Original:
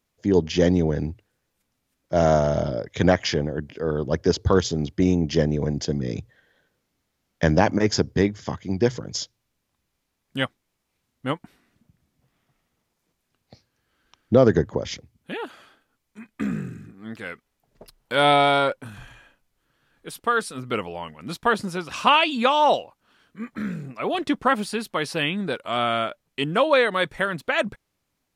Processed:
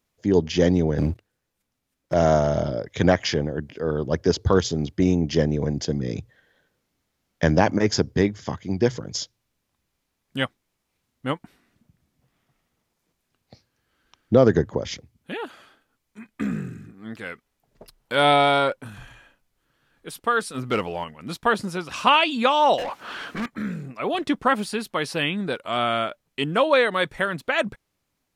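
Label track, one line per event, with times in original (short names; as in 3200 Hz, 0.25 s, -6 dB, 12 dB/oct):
0.980000	2.140000	sample leveller passes 2
20.540000	21.040000	sample leveller passes 1
22.780000	23.460000	overdrive pedal drive 38 dB, tone 2300 Hz, clips at -20.5 dBFS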